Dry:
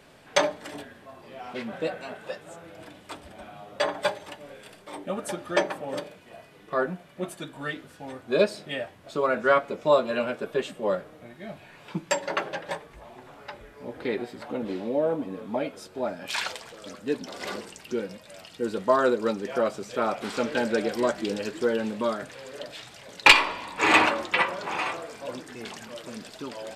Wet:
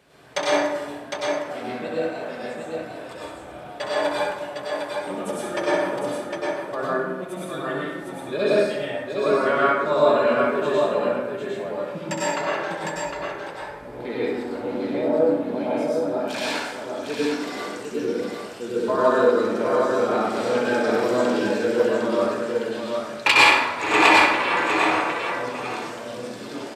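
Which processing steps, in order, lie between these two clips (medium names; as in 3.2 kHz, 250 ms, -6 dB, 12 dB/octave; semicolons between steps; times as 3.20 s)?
high-pass 46 Hz; on a send: multi-tap echo 65/757 ms -7/-4.5 dB; on the sum: plate-style reverb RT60 1.1 s, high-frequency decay 0.5×, pre-delay 85 ms, DRR -7 dB; trim -5 dB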